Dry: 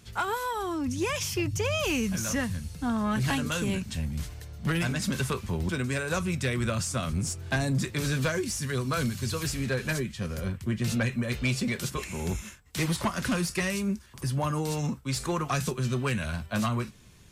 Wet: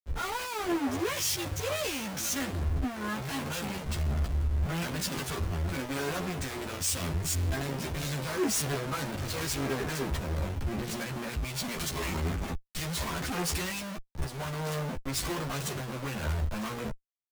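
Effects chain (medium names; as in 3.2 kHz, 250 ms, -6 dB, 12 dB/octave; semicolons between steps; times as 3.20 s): Schmitt trigger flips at -40.5 dBFS; chorus voices 4, 0.14 Hz, delay 13 ms, depth 1.9 ms; three bands expanded up and down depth 100%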